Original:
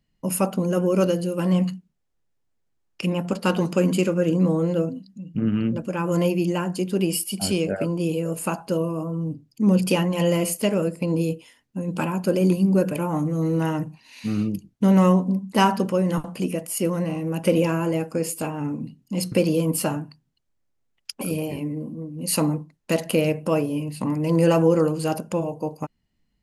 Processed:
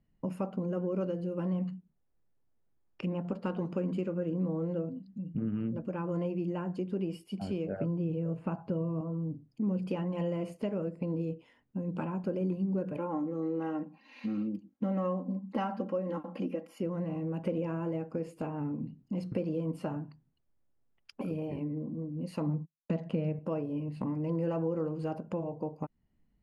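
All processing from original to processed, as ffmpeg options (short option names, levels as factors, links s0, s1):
-filter_complex "[0:a]asettb=1/sr,asplit=3[s0][s1][s2];[s0]atrim=end=7.764[s3];[s1]atrim=start=7.76:end=9.01,asetpts=PTS-STARTPTS,afade=t=in:d=0.004:c=qsin,afade=t=out:st=1.246:d=0.004:c=qsin,acrossover=split=3900[s4][s5];[s5]acompressor=threshold=0.00316:ratio=4:attack=1:release=60[s6];[s4][s6]amix=inputs=2:normalize=0,equalizer=f=120:t=o:w=1.1:g=11[s7];[s2]atrim=start=9.006[s8];[s3][s7]acrossfade=d=0.004:c1=hsin:c2=qsin[s9];[s9][s8]acrossfade=d=0.004:c1=qsin:c2=hsin,asettb=1/sr,asplit=3[s10][s11][s12];[s10]atrim=end=12.974[s13];[s11]atrim=start=12.97:end=16.8,asetpts=PTS-STARTPTS,afade=t=in:d=0.004:c=qsin,afade=t=out:st=3.826:d=0.004:c=qsin,highpass=210,equalizer=f=8300:t=o:w=0.43:g=-8,aecho=1:1:3.7:0.75,atrim=end_sample=168903[s14];[s12]atrim=start=16.796[s15];[s13][s14]acrossfade=d=0.004:c1=hsin:c2=qsin[s16];[s16][s15]acrossfade=d=0.004:c1=qsin:c2=hsin,asettb=1/sr,asplit=3[s17][s18][s19];[s17]atrim=end=22.464[s20];[s18]atrim=start=22.46:end=23.39,asetpts=PTS-STARTPTS,afade=t=in:d=0.004:c=qsin,afade=t=out:st=0.926:d=0.004:c=qsin,lowpass=6600,agate=range=0.0126:threshold=0.01:ratio=16:release=100:detection=peak,equalizer=f=170:t=o:w=0.75:g=9.5[s21];[s19]atrim=start=23.386[s22];[s20][s21]acrossfade=d=0.004:c1=hsin:c2=qsin[s23];[s23][s22]acrossfade=d=0.004:c1=qsin:c2=hsin,acompressor=threshold=0.0178:ratio=2.5,lowpass=f=1200:p=1,aemphasis=mode=reproduction:type=50kf"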